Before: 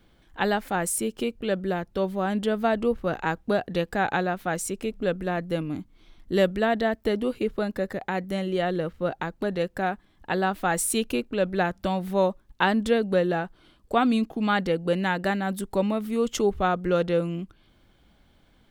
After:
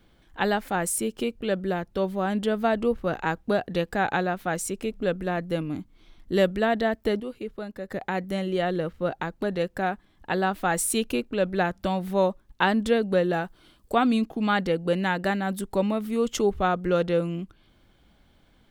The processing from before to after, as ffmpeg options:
-filter_complex "[0:a]asettb=1/sr,asplit=3[s0][s1][s2];[s0]atrim=end=13.334[s3];[s1]atrim=start=13.33:end=13.95,asetpts=PTS-STARTPTS,afade=t=in:d=0.004:c=qsin,afade=t=out:st=0.616:d=0.004:c=qsin,highshelf=f=6100:g=9.5[s4];[s2]atrim=start=13.946[s5];[s3][s4]acrossfade=d=0.004:c1=hsin:c2=qsin[s6];[s6][s5]acrossfade=d=0.004:c1=qsin:c2=hsin,asplit=3[s7][s8][s9];[s7]atrim=end=7.202[s10];[s8]atrim=start=7.198:end=7.912,asetpts=PTS-STARTPTS,volume=0.398[s11];[s9]atrim=start=7.908[s12];[s10][s11]acrossfade=d=0.004:c1=hsin:c2=hsin[s13];[s13][s12]acrossfade=d=0.004:c1=hsin:c2=hsin"

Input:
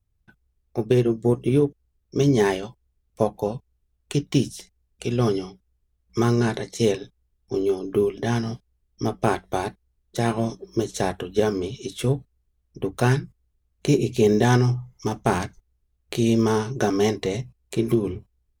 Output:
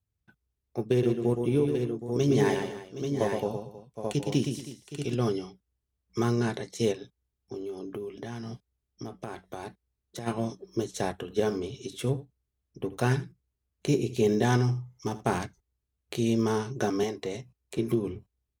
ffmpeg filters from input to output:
-filter_complex "[0:a]asettb=1/sr,asplit=3[s0][s1][s2];[s0]atrim=end=0.914[s3];[s1]atrim=start=0.91:end=5.15,asetpts=PTS-STARTPTS,afade=t=in:d=0.004:c=qsin,afade=t=out:st=4.236:d=0.004:c=qsin,aecho=1:1:117|226|319|768|836:0.501|0.133|0.15|0.224|0.501,atrim=end_sample=186984[s4];[s2]atrim=start=5.146[s5];[s3][s4]acrossfade=d=0.004:c1=hsin:c2=qsin[s6];[s6][s5]acrossfade=d=0.004:c1=qsin:c2=hsin,asplit=3[s7][s8][s9];[s7]afade=t=out:st=6.92:d=0.02[s10];[s8]acompressor=threshold=0.0447:ratio=6:attack=3.2:release=140:knee=1:detection=peak,afade=t=in:st=6.92:d=0.02,afade=t=out:st=10.26:d=0.02[s11];[s9]afade=t=in:st=10.26:d=0.02[s12];[s10][s11][s12]amix=inputs=3:normalize=0,asplit=3[s13][s14][s15];[s13]afade=t=out:st=11.26:d=0.02[s16];[s14]aecho=1:1:80:0.158,afade=t=in:st=11.26:d=0.02,afade=t=out:st=15.37:d=0.02[s17];[s15]afade=t=in:st=15.37:d=0.02[s18];[s16][s17][s18]amix=inputs=3:normalize=0,asettb=1/sr,asplit=3[s19][s20][s21];[s19]atrim=end=17.034[s22];[s20]atrim=start=17.03:end=17.78,asetpts=PTS-STARTPTS,afade=t=in:d=0.004:c=qsin,afade=t=out:st=0.746:d=0.004:c=qsin,acrossover=split=250|1500|3400[s23][s24][s25][s26];[s23]acompressor=threshold=0.0141:ratio=3[s27];[s24]acompressor=threshold=0.0631:ratio=3[s28];[s25]acompressor=threshold=0.00891:ratio=3[s29];[s26]acompressor=threshold=0.0112:ratio=3[s30];[s27][s28][s29][s30]amix=inputs=4:normalize=0[s31];[s21]atrim=start=17.776[s32];[s22][s31]acrossfade=d=0.004:c1=hsin:c2=qsin[s33];[s33][s32]acrossfade=d=0.004:c1=qsin:c2=hsin,highpass=71,volume=0.501"

